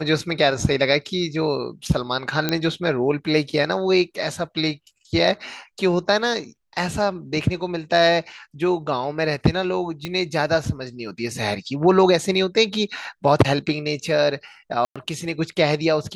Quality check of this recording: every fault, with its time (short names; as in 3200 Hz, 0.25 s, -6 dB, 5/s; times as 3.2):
2.49 pop -6 dBFS
10.05 pop -13 dBFS
14.85–14.96 gap 0.106 s